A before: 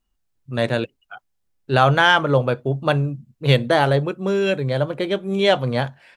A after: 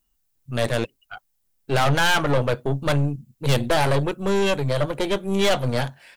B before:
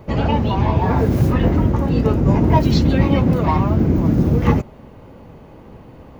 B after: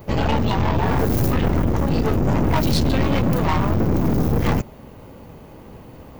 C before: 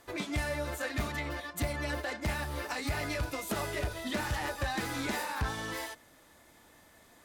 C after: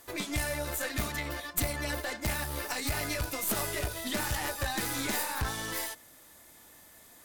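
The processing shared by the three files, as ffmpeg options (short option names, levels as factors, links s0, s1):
-af "aemphasis=mode=production:type=50kf,aeval=exprs='(tanh(10*val(0)+0.75)-tanh(0.75))/10':c=same,volume=1.58"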